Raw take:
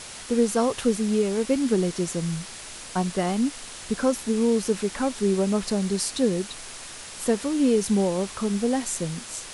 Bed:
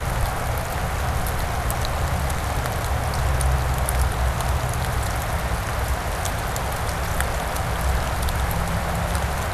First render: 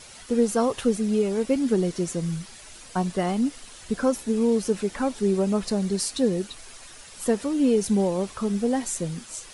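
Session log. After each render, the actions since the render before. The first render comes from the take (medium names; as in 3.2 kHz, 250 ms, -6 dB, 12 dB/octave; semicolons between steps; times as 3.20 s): noise reduction 9 dB, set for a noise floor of -40 dBFS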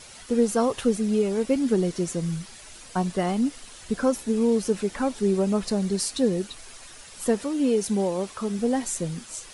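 7.44–8.59 s: bass shelf 150 Hz -9.5 dB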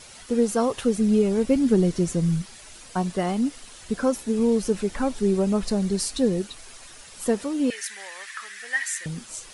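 0.98–2.42 s: bass shelf 170 Hz +11.5 dB; 4.39–6.42 s: bass shelf 73 Hz +11.5 dB; 7.70–9.06 s: resonant high-pass 1.8 kHz, resonance Q 9.8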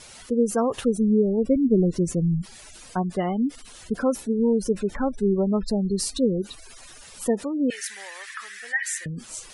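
spectral gate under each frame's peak -25 dB strong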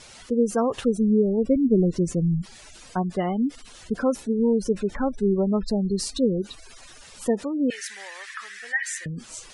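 low-pass 8.1 kHz 12 dB/octave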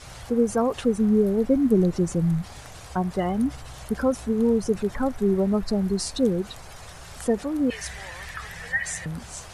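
add bed -19.5 dB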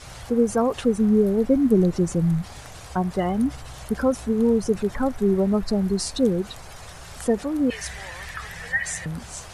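trim +1.5 dB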